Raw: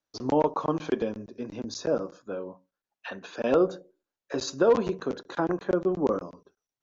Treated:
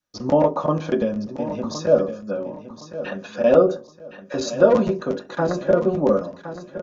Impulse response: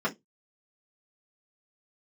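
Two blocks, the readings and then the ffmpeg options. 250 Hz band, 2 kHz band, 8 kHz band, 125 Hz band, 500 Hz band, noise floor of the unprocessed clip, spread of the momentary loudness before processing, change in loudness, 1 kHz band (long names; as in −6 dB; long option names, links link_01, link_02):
+6.0 dB, +5.5 dB, can't be measured, +9.5 dB, +8.0 dB, below −85 dBFS, 15 LU, +7.0 dB, +5.0 dB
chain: -filter_complex "[0:a]aecho=1:1:1065|2130|3195:0.266|0.0798|0.0239,adynamicequalizer=threshold=0.01:dfrequency=600:dqfactor=3.3:tfrequency=600:tqfactor=3.3:attack=5:release=100:ratio=0.375:range=3.5:mode=boostabove:tftype=bell,asplit=2[link_01][link_02];[1:a]atrim=start_sample=2205[link_03];[link_02][link_03]afir=irnorm=-1:irlink=0,volume=-12.5dB[link_04];[link_01][link_04]amix=inputs=2:normalize=0,volume=4dB"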